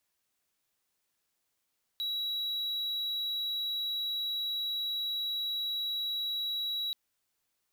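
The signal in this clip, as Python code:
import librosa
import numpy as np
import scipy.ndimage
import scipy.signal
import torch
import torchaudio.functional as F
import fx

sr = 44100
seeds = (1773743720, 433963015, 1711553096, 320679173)

y = 10.0 ** (-29.0 / 20.0) * (1.0 - 4.0 * np.abs(np.mod(3890.0 * (np.arange(round(4.93 * sr)) / sr) + 0.25, 1.0) - 0.5))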